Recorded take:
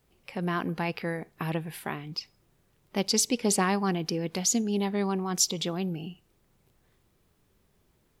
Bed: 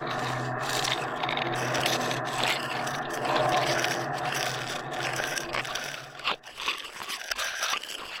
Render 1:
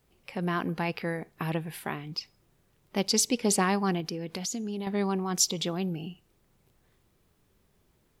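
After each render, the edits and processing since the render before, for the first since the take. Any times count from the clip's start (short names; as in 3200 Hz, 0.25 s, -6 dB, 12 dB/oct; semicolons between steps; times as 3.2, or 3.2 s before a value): 4–4.87 compressor, threshold -30 dBFS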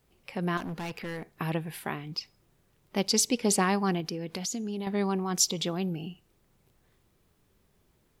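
0.57–1.32 hard clip -33 dBFS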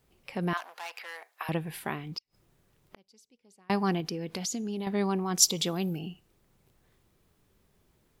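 0.53–1.49 HPF 680 Hz 24 dB/oct; 2.18–3.7 flipped gate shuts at -28 dBFS, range -36 dB; 5.42–5.99 high shelf 7100 Hz +11.5 dB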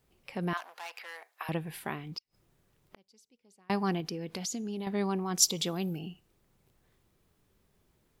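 gain -2.5 dB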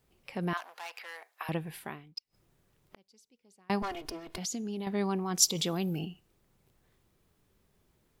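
1.47–2.17 fade out equal-power; 3.82–4.38 minimum comb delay 2.8 ms; 5.55–6.05 fast leveller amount 50%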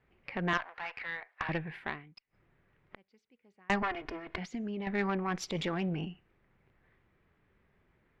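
synth low-pass 2000 Hz, resonance Q 2.4; added harmonics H 4 -15 dB, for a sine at -16 dBFS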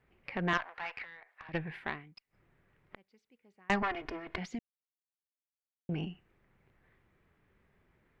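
1.04–1.54 compressor 3:1, threshold -51 dBFS; 4.59–5.89 mute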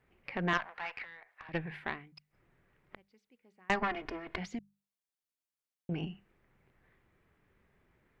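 notches 50/100/150/200 Hz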